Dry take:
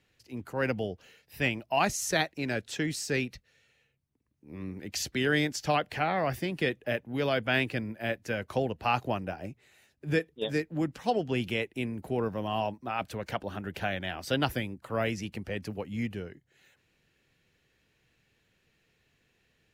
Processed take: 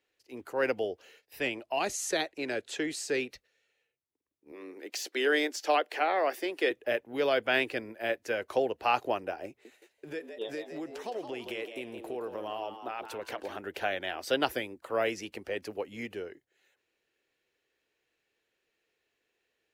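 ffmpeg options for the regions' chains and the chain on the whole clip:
-filter_complex "[0:a]asettb=1/sr,asplit=3[a][b][c];[a]atrim=end=1.394[d];[b]atrim=start=1.39:end=3.3,asetpts=PTS-STARTPTS,afade=t=in:d=0.004:c=qsin,afade=t=out:st=1.906:d=0.004:c=qsin,lowpass=11k,equalizer=f=5.5k:t=o:w=0.21:g=-6,acrossover=split=490|3000[e][f][g];[f]acompressor=threshold=-34dB:ratio=2.5:attack=3.2:release=140:knee=2.83:detection=peak[h];[e][h][g]amix=inputs=3:normalize=0[i];[c]atrim=start=3.296[j];[d][i]acrossfade=d=0.004:c1=hsin:c2=qsin[k];[k][j]acrossfade=d=0.004:c1=qsin:c2=hsin,asettb=1/sr,asplit=3[l][m][n];[l]atrim=end=4.524[o];[m]atrim=start=4.52:end=6.71,asetpts=PTS-STARTPTS,afade=t=in:d=0.004:c=qsin,afade=t=out:st=2.186:d=0.004:c=qsin,highpass=f=270:w=0.5412,highpass=f=270:w=1.3066,deesser=0.7[p];[n]atrim=start=6.706[q];[o][p]acrossfade=d=0.004:c1=hsin:c2=qsin[r];[r][q]acrossfade=d=0.004:c1=qsin:c2=hsin,asettb=1/sr,asplit=3[s][t][u];[s]atrim=end=9.484[v];[t]atrim=start=9.48:end=13.59,asetpts=PTS-STARTPTS,afade=t=in:d=0.004:c=qsin,afade=t=out:st=4.106:d=0.004:c=qsin,acompressor=threshold=-32dB:ratio=16:attack=3.2:release=140:knee=1:detection=peak,asplit=5[w][x][y][z][aa];[x]adelay=166,afreqshift=110,volume=-9dB[ab];[y]adelay=332,afreqshift=220,volume=-18.9dB[ac];[z]adelay=498,afreqshift=330,volume=-28.8dB[ad];[aa]adelay=664,afreqshift=440,volume=-38.7dB[ae];[w][ab][ac][ad][ae]amix=inputs=5:normalize=0,atrim=end_sample=181251[af];[u]atrim=start=13.586[ag];[v][af]acrossfade=d=0.004:c1=hsin:c2=qsin[ah];[ah][ag]acrossfade=d=0.004:c1=qsin:c2=hsin,lowshelf=f=250:t=q:w=1.5:g=-13.5,agate=range=-8dB:threshold=-58dB:ratio=16:detection=peak"

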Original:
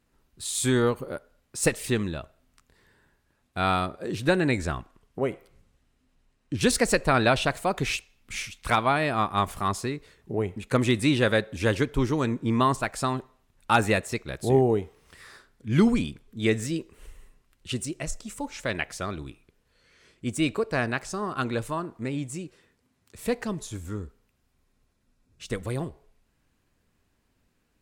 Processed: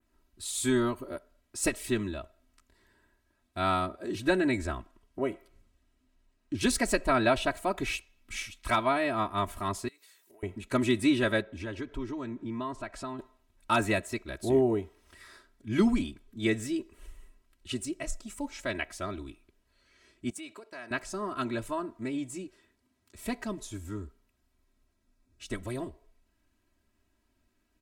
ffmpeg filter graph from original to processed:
-filter_complex "[0:a]asettb=1/sr,asplit=3[a][b][c];[a]atrim=end=9.884[d];[b]atrim=start=9.88:end=10.43,asetpts=PTS-STARTPTS,afade=t=in:d=0.004:c=qsin,afade=t=out:st=0.546:d=0.004:c=qsin,highpass=f=1.1k:p=1,aemphasis=mode=production:type=riaa,acompressor=threshold=-50dB:ratio=12:attack=3.2:release=140:knee=1:detection=peak[e];[c]atrim=start=10.426[f];[d][e]acrossfade=d=0.004:c1=hsin:c2=qsin[g];[g][f]acrossfade=d=0.004:c1=qsin:c2=hsin,asettb=1/sr,asplit=3[h][i][j];[h]atrim=end=11.424[k];[i]atrim=start=11.42:end=13.19,asetpts=PTS-STARTPTS,afade=t=in:d=0.004:c=qsin,afade=t=out:st=1.766:d=0.004:c=qsin,aemphasis=mode=reproduction:type=50fm,acompressor=threshold=-35dB:ratio=2:attack=3.2:release=140:knee=1:detection=peak[l];[j]atrim=start=13.186[m];[k][l]acrossfade=d=0.004:c1=hsin:c2=qsin[n];[n][m]acrossfade=d=0.004:c1=qsin:c2=hsin,asettb=1/sr,asplit=3[o][p][q];[o]atrim=end=20.304[r];[p]atrim=start=20.3:end=20.91,asetpts=PTS-STARTPTS,afade=t=in:d=0.004:c=qsin,afade=t=out:st=0.606:d=0.004:c=qsin,agate=range=-33dB:threshold=-35dB:ratio=3:release=100:detection=peak,acompressor=threshold=-32dB:ratio=5:attack=3.2:release=140:knee=1:detection=peak,highpass=f=730:p=1[s];[q]atrim=start=20.906[t];[r][s]acrossfade=d=0.004:c1=hsin:c2=qsin[u];[u][t]acrossfade=d=0.004:c1=qsin:c2=hsin,equalizer=f=180:w=5:g=8,aecho=1:1:3.1:0.97,adynamicequalizer=threshold=0.00794:dfrequency=5300:dqfactor=0.95:tfrequency=5300:tqfactor=0.95:attack=5:release=100:ratio=0.375:range=2.5:mode=cutabove:tftype=bell,volume=-6.5dB"

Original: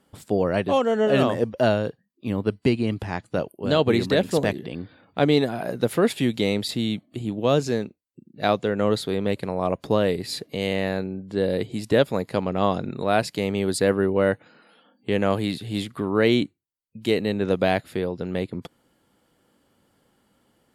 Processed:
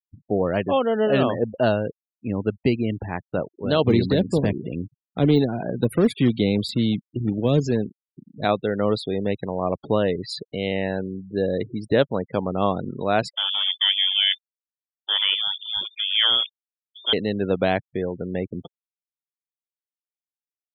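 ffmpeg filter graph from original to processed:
-filter_complex "[0:a]asettb=1/sr,asplit=3[a][b][c];[a]atrim=end=3.844[d];[b]atrim=start=3.84:end=8.45,asetpts=PTS-STARTPTS,afade=t=in:d=0.004:c=qsin,afade=t=out:st=4.606:d=0.004:c=qsin,acrossover=split=480|3000[e][f][g];[f]acompressor=threshold=-31dB:ratio=3:attack=3.2:release=140:knee=2.83:detection=peak[h];[e][h][g]amix=inputs=3:normalize=0,acrusher=bits=3:mode=log:mix=0:aa=0.000001,lowshelf=f=290:g=6.5[i];[c]atrim=start=8.446[j];[d][i]acrossfade=d=0.004:c1=hsin:c2=qsin[k];[k][j]acrossfade=d=0.004:c1=qsin:c2=hsin,asettb=1/sr,asplit=3[l][m][n];[l]atrim=end=13.344[o];[m]atrim=start=13.34:end=17.13,asetpts=PTS-STARTPTS,afade=t=in:d=0.004:c=qsin,afade=t=out:st=3.786:d=0.004:c=qsin,acrusher=bits=6:dc=4:mix=0:aa=0.000001,lowpass=f=3.1k:t=q:w=0.5098,lowpass=f=3.1k:t=q:w=0.6013,lowpass=f=3.1k:t=q:w=0.9,lowpass=f=3.1k:t=q:w=2.563,afreqshift=-3600[p];[n]atrim=start=17.126[q];[o][p]acrossfade=d=0.004:c1=hsin:c2=qsin[r];[r][q]acrossfade=d=0.004:c1=qsin:c2=hsin,deesser=0.45,afftfilt=real='re*gte(hypot(re,im),0.0282)':imag='im*gte(hypot(re,im),0.0282)':win_size=1024:overlap=0.75"

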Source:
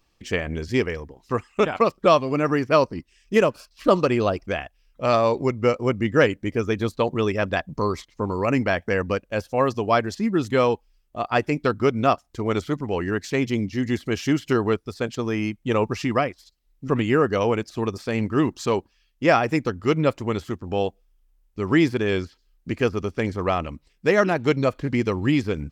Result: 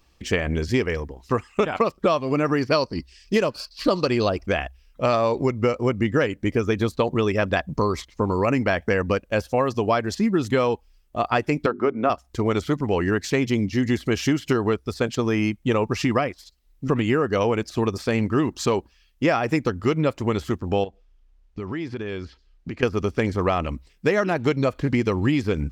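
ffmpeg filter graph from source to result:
-filter_complex "[0:a]asettb=1/sr,asplit=3[a][b][c];[a]atrim=end=2.614[d];[b]atrim=start=2.61:end=4.29,asetpts=PTS-STARTPTS,afade=t=in:d=0.004:c=qsin,afade=t=out:st=1.676:d=0.004:c=qsin,equalizer=f=4.5k:t=o:w=0.44:g=13,bandreject=f=1.3k:w=28[e];[c]atrim=start=4.286[f];[d][e]acrossfade=d=0.004:c1=hsin:c2=qsin[g];[g][f]acrossfade=d=0.004:c1=qsin:c2=hsin,asettb=1/sr,asplit=3[h][i][j];[h]atrim=end=11.664[k];[i]atrim=start=11.66:end=12.1,asetpts=PTS-STARTPTS,afade=t=in:d=0.004:c=qsin,afade=t=out:st=0.436:d=0.004:c=qsin,acrossover=split=210 2200:gain=0.126 1 0.126[l][m][n];[l][m][n]amix=inputs=3:normalize=0,bandreject=f=50:t=h:w=6,bandreject=f=100:t=h:w=6,bandreject=f=150:t=h:w=6,bandreject=f=200:t=h:w=6,bandreject=f=250:t=h:w=6,bandreject=f=300:t=h:w=6,bandreject=f=350:t=h:w=6,bandreject=f=400:t=h:w=6[o];[j]atrim=start=12.096[p];[k][o]acrossfade=d=0.004:c1=hsin:c2=qsin[q];[q][p]acrossfade=d=0.004:c1=qsin:c2=hsin,asettb=1/sr,asplit=3[r][s][t];[r]atrim=end=20.844[u];[s]atrim=start=20.84:end=22.83,asetpts=PTS-STARTPTS,afade=t=in:d=0.004:c=qsin,afade=t=out:st=1.986:d=0.004:c=qsin,acompressor=threshold=-33dB:ratio=5:attack=3.2:release=140:knee=1:detection=peak,lowpass=5.1k[v];[t]atrim=start=22.826[w];[u][v]acrossfade=d=0.004:c1=hsin:c2=qsin[x];[x][w]acrossfade=d=0.004:c1=qsin:c2=hsin,equalizer=f=64:t=o:w=0.21:g=9.5,acompressor=threshold=-22dB:ratio=6,volume=5dB"

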